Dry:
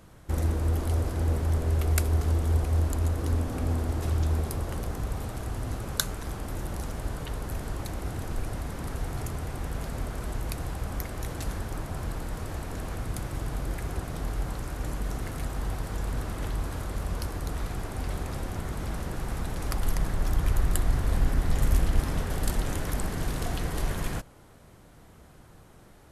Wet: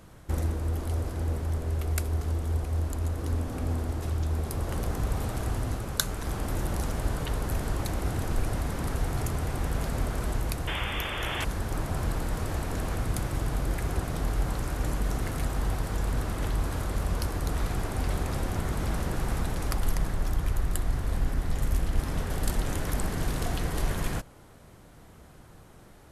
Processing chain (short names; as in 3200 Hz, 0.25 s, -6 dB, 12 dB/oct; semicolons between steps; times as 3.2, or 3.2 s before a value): painted sound noise, 10.67–11.45, 290–3600 Hz -33 dBFS; vocal rider within 4 dB 0.5 s